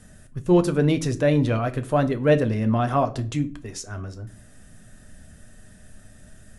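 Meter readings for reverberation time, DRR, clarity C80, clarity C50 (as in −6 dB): 0.45 s, 7.5 dB, 22.5 dB, 17.5 dB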